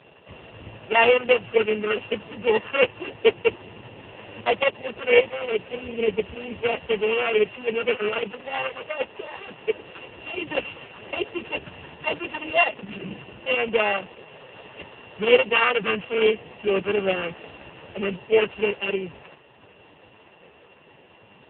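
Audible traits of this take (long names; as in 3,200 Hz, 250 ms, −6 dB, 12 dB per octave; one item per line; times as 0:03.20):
a buzz of ramps at a fixed pitch in blocks of 16 samples
AMR narrowband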